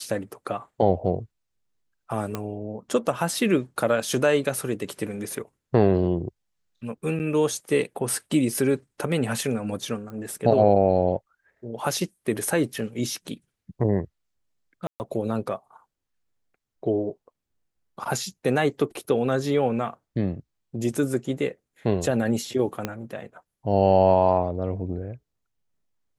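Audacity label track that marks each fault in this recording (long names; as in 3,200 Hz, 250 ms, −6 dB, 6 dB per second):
2.350000	2.350000	click −14 dBFS
7.190000	7.200000	drop-out 9.3 ms
10.100000	10.100000	click −27 dBFS
14.870000	15.000000	drop-out 129 ms
22.850000	22.850000	click −12 dBFS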